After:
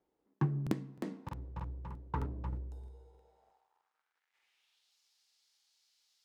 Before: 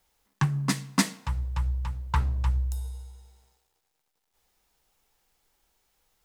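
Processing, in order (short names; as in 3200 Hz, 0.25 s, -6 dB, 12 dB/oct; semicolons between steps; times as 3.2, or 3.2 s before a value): band-pass sweep 330 Hz -> 4600 Hz, 2.89–4.98; crackling interface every 0.31 s, samples 2048, repeat, from 0.62; gain +6.5 dB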